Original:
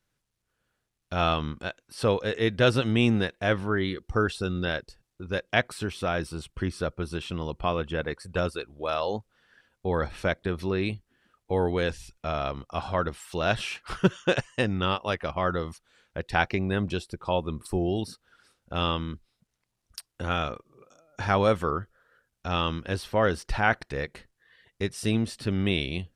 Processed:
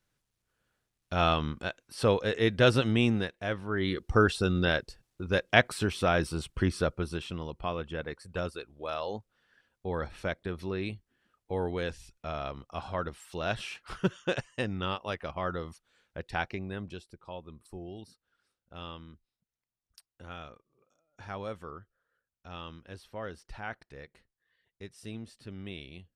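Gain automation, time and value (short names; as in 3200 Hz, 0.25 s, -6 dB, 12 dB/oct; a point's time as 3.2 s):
2.81 s -1 dB
3.62 s -9 dB
3.96 s +2 dB
6.76 s +2 dB
7.51 s -6.5 dB
16.21 s -6.5 dB
17.34 s -16 dB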